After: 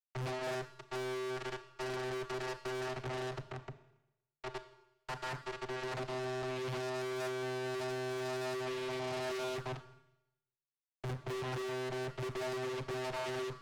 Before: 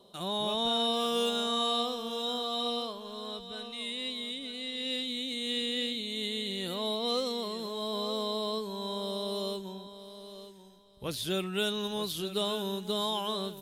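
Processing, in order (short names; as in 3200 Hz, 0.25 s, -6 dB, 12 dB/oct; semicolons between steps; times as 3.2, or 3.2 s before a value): spectral contrast raised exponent 3.7; compressor 3:1, threshold -39 dBFS, peak gain reduction 8.5 dB; Gaussian blur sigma 4.4 samples; companded quantiser 2-bit; vocoder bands 16, square 128 Hz; tube stage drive 47 dB, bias 0.6; Schroeder reverb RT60 0.89 s, combs from 27 ms, DRR 10.5 dB; Doppler distortion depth 0.82 ms; gain +10 dB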